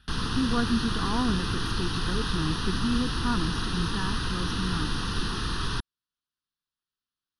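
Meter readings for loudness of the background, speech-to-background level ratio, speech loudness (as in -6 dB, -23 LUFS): -30.5 LUFS, -1.5 dB, -32.0 LUFS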